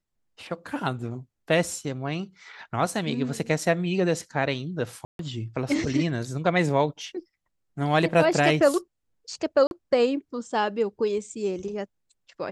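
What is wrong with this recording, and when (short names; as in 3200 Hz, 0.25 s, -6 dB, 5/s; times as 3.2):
5.05–5.19 gap 0.142 s
9.67–9.71 gap 41 ms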